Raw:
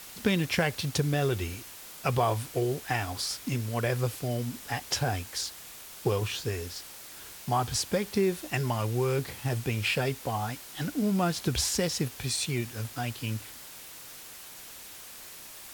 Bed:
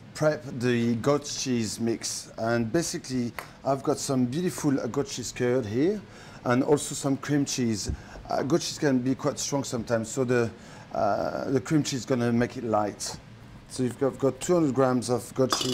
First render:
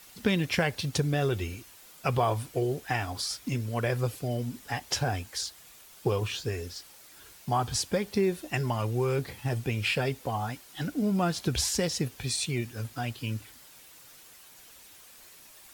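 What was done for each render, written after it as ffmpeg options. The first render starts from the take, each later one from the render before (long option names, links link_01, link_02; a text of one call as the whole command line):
ffmpeg -i in.wav -af "afftdn=noise_reduction=8:noise_floor=-46" out.wav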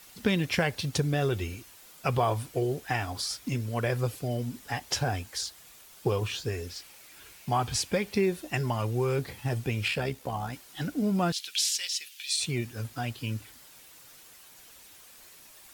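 ffmpeg -i in.wav -filter_complex "[0:a]asettb=1/sr,asplit=3[link_01][link_02][link_03];[link_01]atrim=end=6.684[link_04];[link_02]atrim=start=6.68:end=8.26,asetpts=PTS-STARTPTS,afade=type=in:duration=0.004:curve=qsin,afade=type=out:start_time=1.576:duration=0.004:curve=qsin,equalizer=frequency=2400:width_type=o:width=0.58:gain=6.5[link_05];[link_03]atrim=start=8.256[link_06];[link_04][link_05]acrossfade=duration=0.004:curve1=hsin:curve2=qsin[link_07];[link_07][link_06]acrossfade=duration=0.004:curve1=qsin:curve2=hsin,asettb=1/sr,asplit=3[link_08][link_09][link_10];[link_08]atrim=end=9.884[link_11];[link_09]atrim=start=9.88:end=10.53,asetpts=PTS-STARTPTS,afade=type=in:duration=0.004:curve=qsin,afade=type=out:start_time=0.646:duration=0.004:curve=qsin,tremolo=f=69:d=0.462[link_12];[link_10]atrim=start=10.526[link_13];[link_11][link_12]acrossfade=duration=0.004:curve1=hsin:curve2=qsin[link_14];[link_14][link_13]acrossfade=duration=0.004:curve1=qsin:curve2=hsin,asettb=1/sr,asplit=3[link_15][link_16][link_17];[link_15]atrim=end=11.324[link_18];[link_16]atrim=start=11.32:end=12.4,asetpts=PTS-STARTPTS,afade=type=in:duration=0.004:curve=qsin,afade=type=out:start_time=1.076:duration=0.004:curve=qsin,highpass=frequency=2900:width_type=q:width=1.9[link_19];[link_17]atrim=start=12.396[link_20];[link_18][link_19]acrossfade=duration=0.004:curve1=hsin:curve2=qsin[link_21];[link_21][link_20]acrossfade=duration=0.004:curve1=qsin:curve2=hsin" out.wav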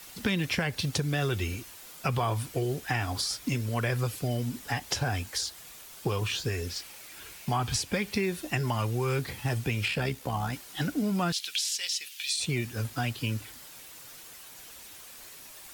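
ffmpeg -i in.wav -filter_complex "[0:a]asplit=2[link_01][link_02];[link_02]alimiter=limit=-21.5dB:level=0:latency=1:release=191,volume=-2.5dB[link_03];[link_01][link_03]amix=inputs=2:normalize=0,acrossover=split=360|860[link_04][link_05][link_06];[link_04]acompressor=threshold=-28dB:ratio=4[link_07];[link_05]acompressor=threshold=-41dB:ratio=4[link_08];[link_06]acompressor=threshold=-28dB:ratio=4[link_09];[link_07][link_08][link_09]amix=inputs=3:normalize=0" out.wav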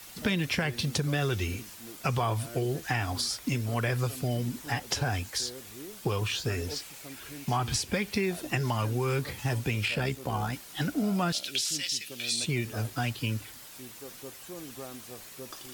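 ffmpeg -i in.wav -i bed.wav -filter_complex "[1:a]volume=-20.5dB[link_01];[0:a][link_01]amix=inputs=2:normalize=0" out.wav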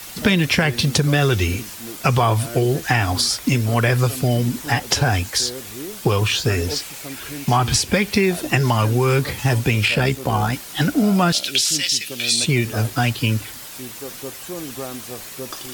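ffmpeg -i in.wav -af "volume=11.5dB" out.wav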